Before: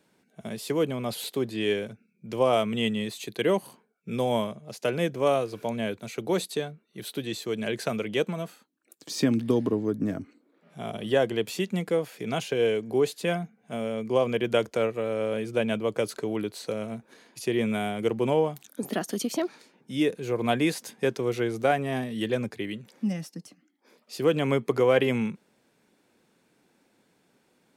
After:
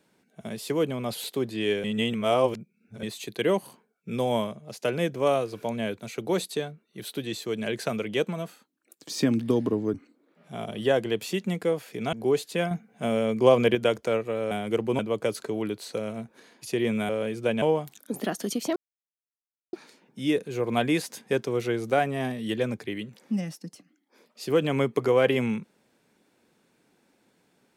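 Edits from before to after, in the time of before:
1.84–3.03 reverse
9.94–10.2 cut
12.39–12.82 cut
13.4–14.44 gain +5.5 dB
15.2–15.73 swap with 17.83–18.31
19.45 insert silence 0.97 s

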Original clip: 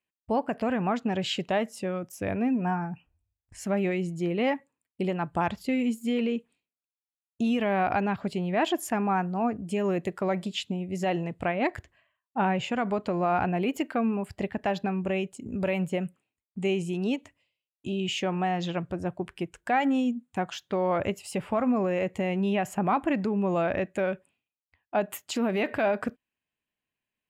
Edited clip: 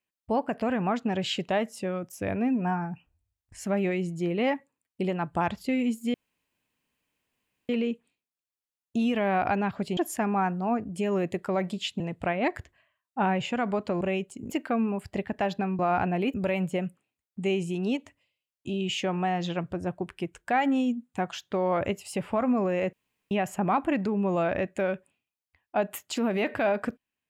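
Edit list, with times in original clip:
6.14 insert room tone 1.55 s
8.42–8.7 cut
10.73–11.19 cut
13.2–13.75 swap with 15.04–15.53
22.12–22.5 room tone

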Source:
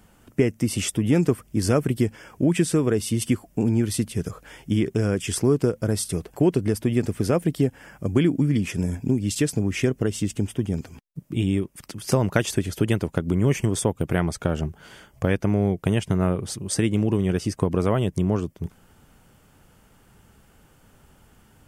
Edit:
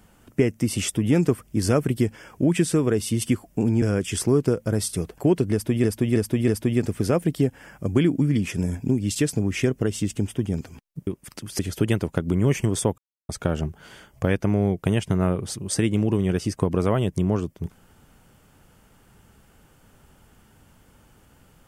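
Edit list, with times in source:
3.82–4.98 cut
6.68–7 loop, 4 plays
11.27–11.59 cut
12.11–12.59 cut
13.98–14.29 mute

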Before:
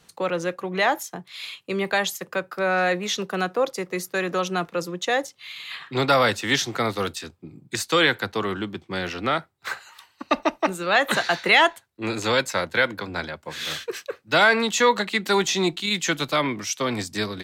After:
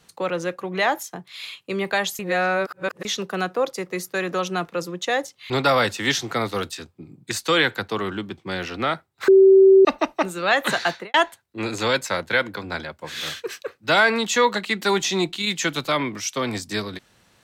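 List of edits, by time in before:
2.19–3.05 reverse
5.5–5.94 cut
9.72–10.29 bleep 385 Hz -8 dBFS
11.32–11.58 studio fade out

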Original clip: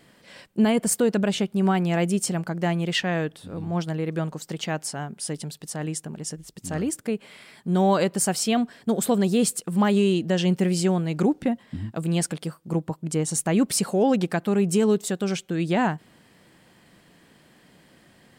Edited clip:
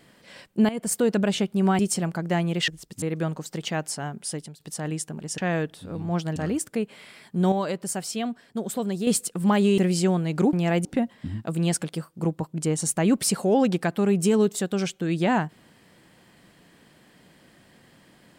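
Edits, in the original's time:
0.69–1.19 fade in equal-power, from -15.5 dB
1.79–2.11 move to 11.34
3–3.98 swap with 6.34–6.68
5.24–5.56 fade out, to -18 dB
7.84–9.39 gain -6.5 dB
10.1–10.59 cut

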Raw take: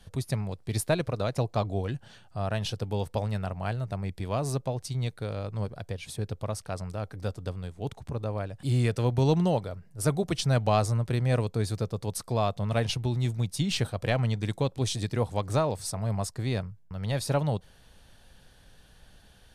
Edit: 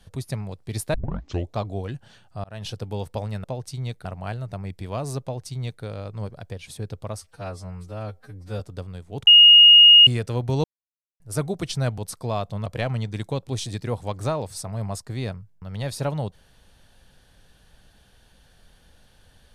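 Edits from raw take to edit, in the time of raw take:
0.94 tape start 0.63 s
2.44–2.7 fade in
4.61–5.22 copy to 3.44
6.59–7.29 stretch 2×
7.96–8.76 bleep 2860 Hz -7 dBFS
9.33–9.89 mute
10.67–12.05 cut
12.73–13.95 cut

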